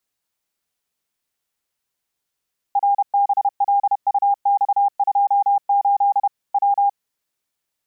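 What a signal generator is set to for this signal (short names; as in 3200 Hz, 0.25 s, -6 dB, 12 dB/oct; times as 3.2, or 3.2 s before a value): Morse "RBLUX28 W" 31 wpm 805 Hz -13 dBFS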